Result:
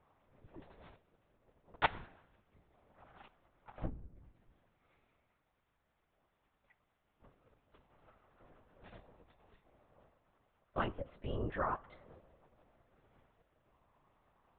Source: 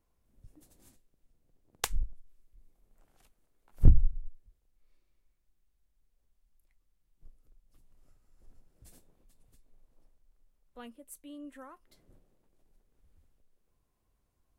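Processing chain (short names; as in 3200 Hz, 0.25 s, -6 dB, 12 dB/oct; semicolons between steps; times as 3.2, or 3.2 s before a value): compressor 4:1, threshold -34 dBFS, peak gain reduction 19.5 dB; band-pass 970 Hz, Q 0.82; reverb RT60 1.0 s, pre-delay 4 ms, DRR 18.5 dB; LPC vocoder at 8 kHz whisper; gain +15.5 dB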